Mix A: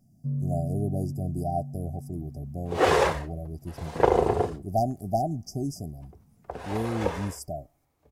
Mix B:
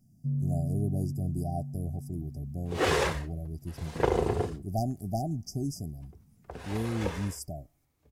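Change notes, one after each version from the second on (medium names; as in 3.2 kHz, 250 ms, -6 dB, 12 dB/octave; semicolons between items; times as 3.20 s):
master: add peaking EQ 720 Hz -8.5 dB 1.8 oct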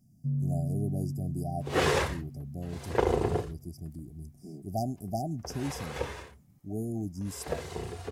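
speech: add bass shelf 77 Hz -11.5 dB; second sound: entry -1.05 s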